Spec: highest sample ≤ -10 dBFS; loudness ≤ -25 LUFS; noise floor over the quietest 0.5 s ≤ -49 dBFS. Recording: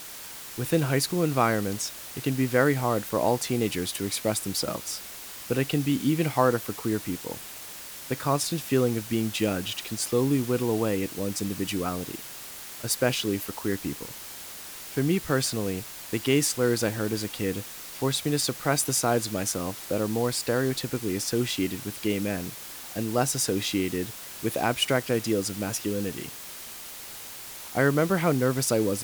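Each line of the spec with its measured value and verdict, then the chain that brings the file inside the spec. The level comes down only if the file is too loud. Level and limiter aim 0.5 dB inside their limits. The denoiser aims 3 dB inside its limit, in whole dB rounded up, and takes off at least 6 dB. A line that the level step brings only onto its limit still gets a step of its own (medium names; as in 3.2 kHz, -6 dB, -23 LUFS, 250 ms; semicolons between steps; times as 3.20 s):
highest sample -8.0 dBFS: fail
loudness -27.0 LUFS: pass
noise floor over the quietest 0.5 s -41 dBFS: fail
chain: noise reduction 11 dB, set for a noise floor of -41 dBFS; peak limiter -10.5 dBFS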